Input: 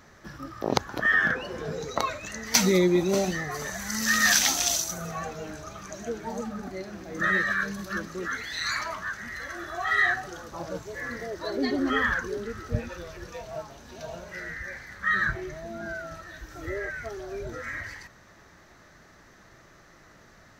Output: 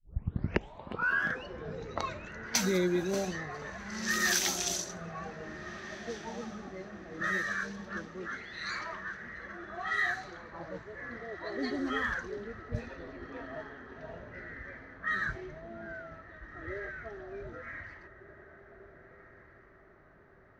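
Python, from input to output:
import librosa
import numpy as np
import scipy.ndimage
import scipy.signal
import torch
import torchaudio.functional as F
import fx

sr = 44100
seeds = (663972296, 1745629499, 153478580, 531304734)

y = fx.tape_start_head(x, sr, length_s=1.3)
y = fx.echo_diffused(y, sr, ms=1604, feedback_pct=42, wet_db=-12.0)
y = fx.env_lowpass(y, sr, base_hz=1400.0, full_db=-19.5)
y = y * librosa.db_to_amplitude(-7.5)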